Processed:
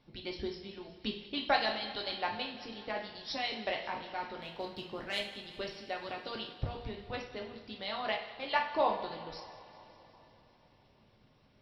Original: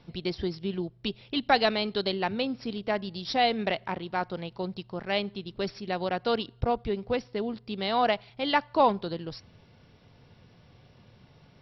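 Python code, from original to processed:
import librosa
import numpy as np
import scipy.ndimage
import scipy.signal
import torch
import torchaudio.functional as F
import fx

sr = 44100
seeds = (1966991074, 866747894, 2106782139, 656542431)

y = fx.leveller(x, sr, passes=1, at=(4.38, 5.21))
y = fx.hpss(y, sr, part='harmonic', gain_db=-13)
y = fx.echo_thinned(y, sr, ms=188, feedback_pct=69, hz=420.0, wet_db=-18.0)
y = fx.rev_double_slope(y, sr, seeds[0], early_s=0.55, late_s=4.0, knee_db=-19, drr_db=0.0)
y = F.gain(torch.from_numpy(y), -6.5).numpy()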